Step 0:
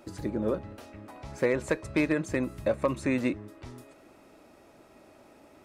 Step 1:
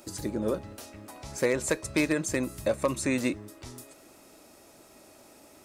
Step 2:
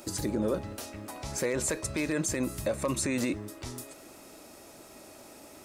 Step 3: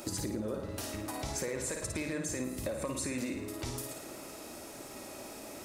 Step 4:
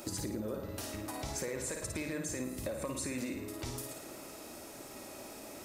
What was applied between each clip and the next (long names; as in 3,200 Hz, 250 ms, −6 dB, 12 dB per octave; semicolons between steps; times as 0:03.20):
bass and treble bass −1 dB, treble +14 dB
brickwall limiter −24 dBFS, peak gain reduction 11 dB; level +4 dB
on a send: flutter between parallel walls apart 9.4 metres, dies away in 0.59 s; on the sum: downward compressor 5 to 1, threshold −37 dBFS, peak gain reduction 12.5 dB; level +3 dB
steady tone 14,000 Hz −60 dBFS; level −2 dB